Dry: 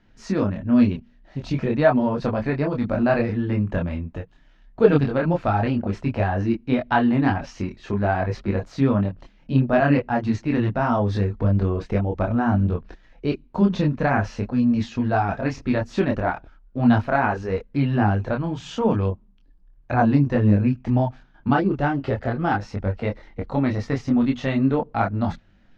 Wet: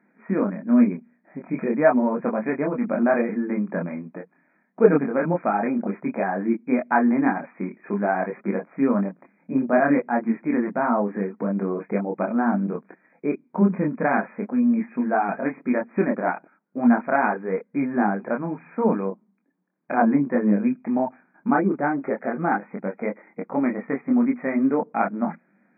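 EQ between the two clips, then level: brick-wall FIR band-pass 160–2500 Hz; 0.0 dB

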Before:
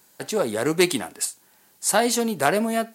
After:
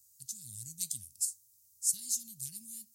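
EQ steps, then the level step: Chebyshev band-stop 100–6000 Hz, order 3; Chebyshev band-stop 280–1000 Hz, order 3; -5.0 dB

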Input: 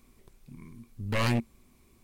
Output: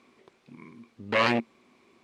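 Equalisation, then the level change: band-pass 320–3700 Hz; +7.5 dB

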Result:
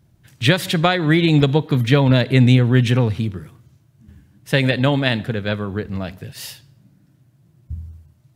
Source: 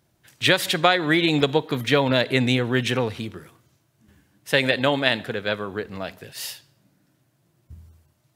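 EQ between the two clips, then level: tone controls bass +14 dB, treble -1 dB; 0.0 dB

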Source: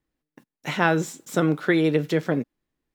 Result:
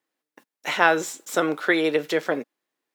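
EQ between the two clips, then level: high-pass 470 Hz 12 dB/octave; +4.0 dB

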